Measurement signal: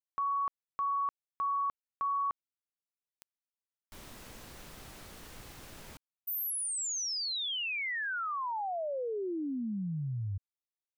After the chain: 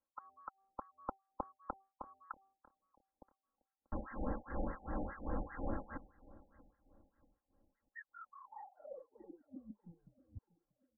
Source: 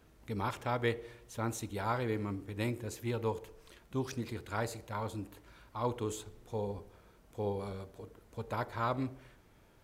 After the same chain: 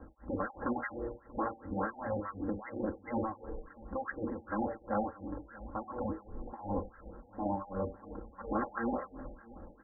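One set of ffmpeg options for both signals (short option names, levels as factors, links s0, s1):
-filter_complex "[0:a]bandreject=f=1900:w=14,acrossover=split=300|2700[s0][s1][s2];[s0]acompressor=threshold=0.00562:ratio=6:release=284:knee=2.83:detection=peak[s3];[s3][s1][s2]amix=inputs=3:normalize=0,afftfilt=real='re*lt(hypot(re,im),0.0447)':imag='im*lt(hypot(re,im),0.0447)':win_size=1024:overlap=0.75,aecho=1:1:3.7:0.81,bandreject=f=388.3:t=h:w=4,bandreject=f=776.6:t=h:w=4,bandreject=f=1164.9:t=h:w=4,acrossover=split=1300[s4][s5];[s4]aeval=exprs='val(0)*(1-1/2+1/2*cos(2*PI*2.8*n/s))':c=same[s6];[s5]aeval=exprs='val(0)*(1-1/2-1/2*cos(2*PI*2.8*n/s))':c=same[s7];[s6][s7]amix=inputs=2:normalize=0,asplit=2[s8][s9];[s9]adelay=637,lowpass=f=1400:p=1,volume=0.1,asplit=2[s10][s11];[s11]adelay=637,lowpass=f=1400:p=1,volume=0.41,asplit=2[s12][s13];[s13]adelay=637,lowpass=f=1400:p=1,volume=0.41[s14];[s8][s10][s12][s14]amix=inputs=4:normalize=0,afftfilt=real='re*lt(b*sr/1024,820*pow(2100/820,0.5+0.5*sin(2*PI*4.9*pts/sr)))':imag='im*lt(b*sr/1024,820*pow(2100/820,0.5+0.5*sin(2*PI*4.9*pts/sr)))':win_size=1024:overlap=0.75,volume=4.73"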